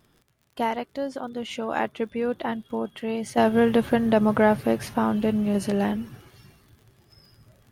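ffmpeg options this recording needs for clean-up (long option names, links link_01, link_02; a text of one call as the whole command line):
ffmpeg -i in.wav -af "adeclick=threshold=4" out.wav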